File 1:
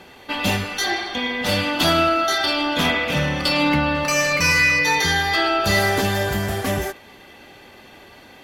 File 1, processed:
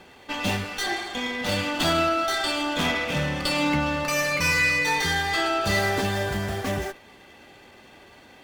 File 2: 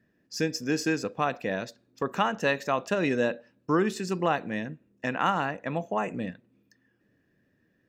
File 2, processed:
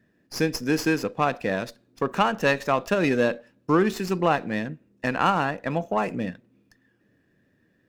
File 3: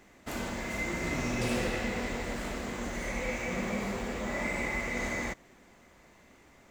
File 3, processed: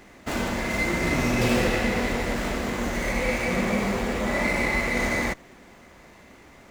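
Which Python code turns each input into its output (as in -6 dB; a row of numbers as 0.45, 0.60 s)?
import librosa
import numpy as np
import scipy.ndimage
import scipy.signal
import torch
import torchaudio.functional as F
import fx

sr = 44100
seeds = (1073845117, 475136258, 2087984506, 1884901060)

y = fx.running_max(x, sr, window=3)
y = y * 10.0 ** (-26 / 20.0) / np.sqrt(np.mean(np.square(y)))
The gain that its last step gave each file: -4.5, +4.0, +9.0 dB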